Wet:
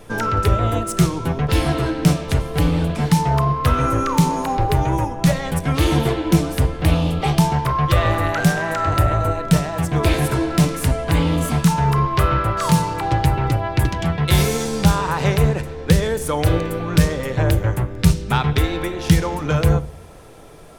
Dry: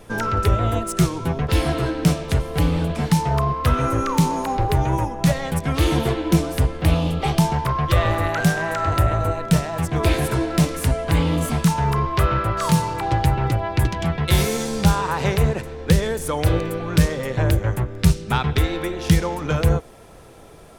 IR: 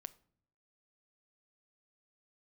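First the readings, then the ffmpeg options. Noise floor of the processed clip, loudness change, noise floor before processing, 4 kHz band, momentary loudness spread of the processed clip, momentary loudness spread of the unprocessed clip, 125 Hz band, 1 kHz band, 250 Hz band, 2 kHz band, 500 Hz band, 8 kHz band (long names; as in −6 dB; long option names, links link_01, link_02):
−32 dBFS, +2.0 dB, −43 dBFS, +1.5 dB, 4 LU, 3 LU, +2.0 dB, +2.0 dB, +2.0 dB, +1.5 dB, +1.5 dB, +1.5 dB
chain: -filter_complex "[1:a]atrim=start_sample=2205[link_01];[0:a][link_01]afir=irnorm=-1:irlink=0,volume=7dB"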